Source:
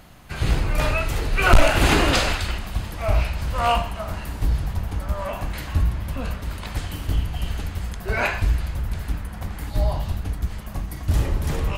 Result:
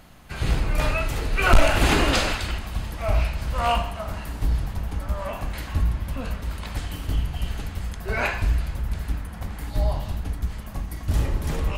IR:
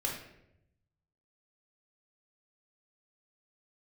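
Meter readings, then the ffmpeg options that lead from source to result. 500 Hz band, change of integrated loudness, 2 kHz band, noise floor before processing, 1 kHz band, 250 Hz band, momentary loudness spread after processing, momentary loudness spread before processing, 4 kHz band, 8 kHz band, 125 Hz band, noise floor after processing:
−2.0 dB, −2.0 dB, −2.0 dB, −34 dBFS, −2.0 dB, −1.5 dB, 12 LU, 13 LU, −2.0 dB, −2.0 dB, −2.0 dB, −36 dBFS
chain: -filter_complex "[0:a]asplit=2[link_01][link_02];[1:a]atrim=start_sample=2205,asetrate=23373,aresample=44100[link_03];[link_02][link_03]afir=irnorm=-1:irlink=0,volume=-20dB[link_04];[link_01][link_04]amix=inputs=2:normalize=0,volume=-3dB"

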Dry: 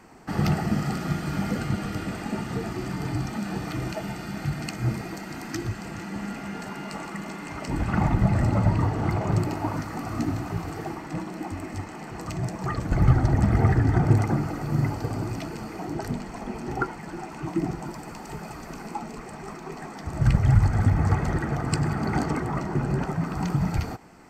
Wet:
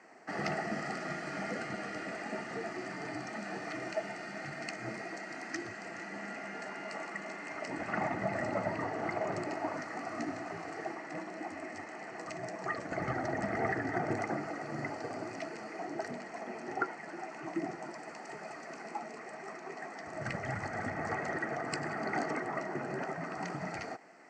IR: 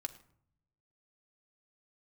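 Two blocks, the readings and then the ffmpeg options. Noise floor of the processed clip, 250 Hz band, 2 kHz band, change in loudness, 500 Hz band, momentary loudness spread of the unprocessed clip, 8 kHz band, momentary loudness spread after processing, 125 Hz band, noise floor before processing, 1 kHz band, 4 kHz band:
−47 dBFS, −12.5 dB, −1.5 dB, −11.5 dB, −4.0 dB, 15 LU, −9.0 dB, 9 LU, −22.5 dB, −40 dBFS, −5.5 dB, −8.0 dB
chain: -af "highpass=330,equalizer=frequency=650:width_type=q:width=4:gain=7,equalizer=frequency=950:width_type=q:width=4:gain=-4,equalizer=frequency=1900:width_type=q:width=4:gain=8,equalizer=frequency=3500:width_type=q:width=4:gain=-8,lowpass=frequency=7400:width=0.5412,lowpass=frequency=7400:width=1.3066,volume=-6dB"

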